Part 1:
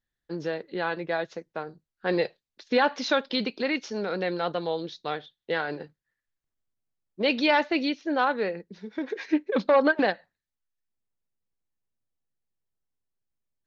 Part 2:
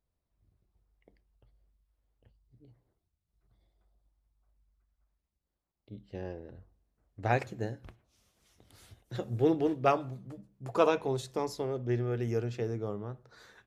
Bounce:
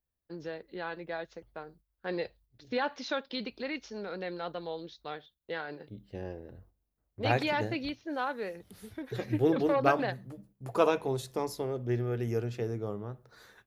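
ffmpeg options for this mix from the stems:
-filter_complex "[0:a]volume=-9dB[a];[1:a]aexciter=amount=2.5:drive=5.1:freq=10k,volume=0dB[b];[a][b]amix=inputs=2:normalize=0,agate=range=-7dB:threshold=-59dB:ratio=16:detection=peak"

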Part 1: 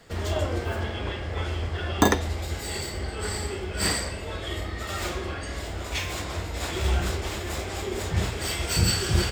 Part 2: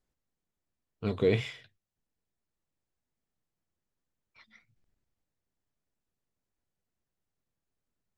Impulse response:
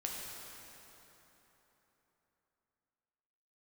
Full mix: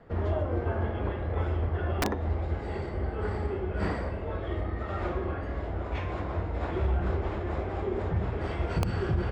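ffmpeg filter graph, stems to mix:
-filter_complex "[0:a]lowpass=1.2k,volume=1dB[a];[1:a]acompressor=threshold=-33dB:ratio=6,volume=-14.5dB[b];[a][b]amix=inputs=2:normalize=0,aeval=exprs='(mod(2.66*val(0)+1,2)-1)/2.66':c=same,alimiter=limit=-19dB:level=0:latency=1:release=158"

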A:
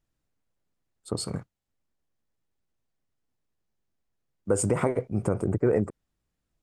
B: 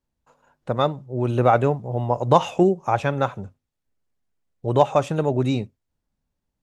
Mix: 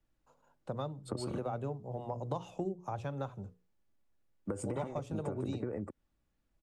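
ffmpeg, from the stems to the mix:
-filter_complex "[0:a]bass=f=250:g=0,treble=f=4k:g=-8,aecho=1:1:3.5:0.31,acompressor=threshold=-26dB:ratio=6,volume=0.5dB[a];[1:a]equalizer=f=2k:w=1.4:g=-8.5,bandreject=f=60:t=h:w=6,bandreject=f=120:t=h:w=6,bandreject=f=180:t=h:w=6,bandreject=f=240:t=h:w=6,bandreject=f=300:t=h:w=6,bandreject=f=360:t=h:w=6,bandreject=f=420:t=h:w=6,bandreject=f=480:t=h:w=6,volume=-8dB[b];[a][b]amix=inputs=2:normalize=0,acrossover=split=95|220[c][d][e];[c]acompressor=threshold=-51dB:ratio=4[f];[d]acompressor=threshold=-43dB:ratio=4[g];[e]acompressor=threshold=-38dB:ratio=4[h];[f][g][h]amix=inputs=3:normalize=0"

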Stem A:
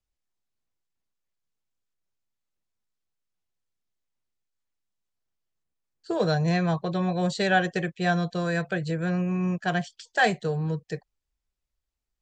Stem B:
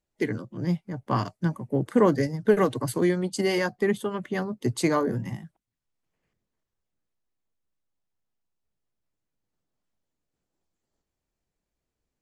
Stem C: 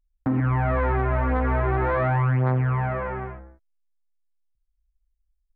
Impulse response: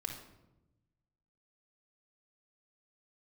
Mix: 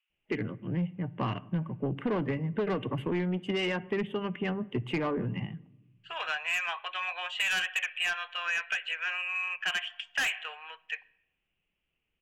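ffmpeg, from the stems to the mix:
-filter_complex "[0:a]highpass=f=1k:w=0.5412,highpass=f=1k:w=1.3066,highshelf=f=2.1k:g=10,volume=0dB,asplit=2[a][b];[b]volume=-14.5dB[c];[1:a]equalizer=f=170:t=o:w=0.44:g=5,adelay=100,volume=-3dB,asplit=2[d][e];[e]volume=-16.5dB[f];[3:a]atrim=start_sample=2205[g];[c][f]amix=inputs=2:normalize=0[h];[h][g]afir=irnorm=-1:irlink=0[i];[a][d][i]amix=inputs=3:normalize=0,firequalizer=gain_entry='entry(1700,0);entry(2800,13);entry(4300,-29)':delay=0.05:min_phase=1,asoftclip=type=tanh:threshold=-20dB,acompressor=threshold=-27dB:ratio=6"

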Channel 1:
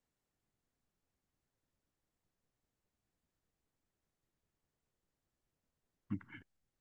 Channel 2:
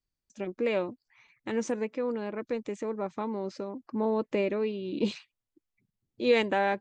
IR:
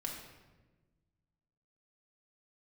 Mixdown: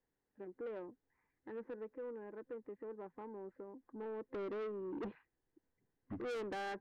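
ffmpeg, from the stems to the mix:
-filter_complex "[0:a]highshelf=f=2.4k:g=-10.5,volume=-2dB,asplit=2[a][b];[b]volume=-14dB[c];[1:a]lowpass=f=1.6k:w=0.5412,lowpass=f=1.6k:w=1.3066,volume=-9.5dB,afade=t=in:st=4.23:d=0.22:silence=0.398107[d];[2:a]atrim=start_sample=2205[e];[c][e]afir=irnorm=-1:irlink=0[f];[a][d][f]amix=inputs=3:normalize=0,superequalizer=6b=1.78:7b=2:9b=1.58:11b=2.24,asoftclip=type=tanh:threshold=-39dB"

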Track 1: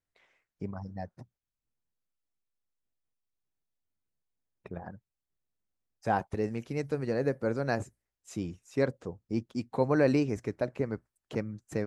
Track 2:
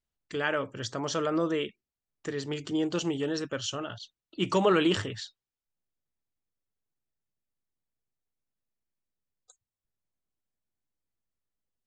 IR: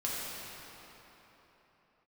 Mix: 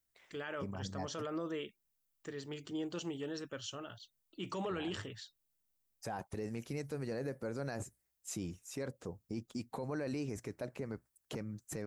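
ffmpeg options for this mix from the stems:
-filter_complex "[0:a]aemphasis=mode=production:type=50kf,acompressor=threshold=-39dB:ratio=1.5,volume=-1dB[a];[1:a]volume=-10.5dB[b];[a][b]amix=inputs=2:normalize=0,alimiter=level_in=6.5dB:limit=-24dB:level=0:latency=1:release=18,volume=-6.5dB"

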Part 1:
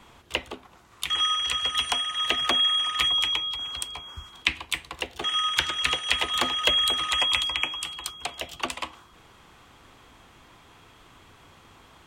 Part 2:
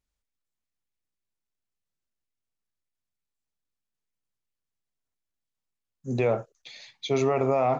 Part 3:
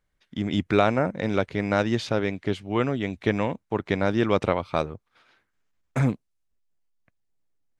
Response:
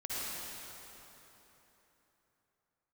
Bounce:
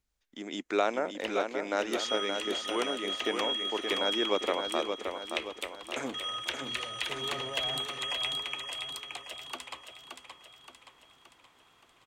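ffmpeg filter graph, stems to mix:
-filter_complex "[0:a]lowshelf=f=180:g=-11,adelay=900,volume=-11dB,asplit=2[a][b];[b]volume=-6dB[c];[1:a]alimiter=limit=-21dB:level=0:latency=1,acrossover=split=350|3700[d][e][f];[d]acompressor=threshold=-43dB:ratio=4[g];[e]acompressor=threshold=-38dB:ratio=4[h];[f]acompressor=threshold=-54dB:ratio=4[i];[g][h][i]amix=inputs=3:normalize=0,asoftclip=type=tanh:threshold=-39.5dB,volume=2dB,asplit=2[j][k];[k]volume=-7.5dB[l];[2:a]highpass=f=300:w=0.5412,highpass=f=300:w=1.3066,agate=range=-11dB:threshold=-57dB:ratio=16:detection=peak,equalizer=f=6.8k:w=2.3:g=10.5,volume=-6.5dB,asplit=3[m][n][o];[n]volume=-6dB[p];[o]apad=whole_len=343913[q];[j][q]sidechaincompress=threshold=-48dB:ratio=8:attack=16:release=1010[r];[c][l][p]amix=inputs=3:normalize=0,aecho=0:1:573|1146|1719|2292|2865|3438|4011:1|0.49|0.24|0.118|0.0576|0.0282|0.0138[s];[a][r][m][s]amix=inputs=4:normalize=0"

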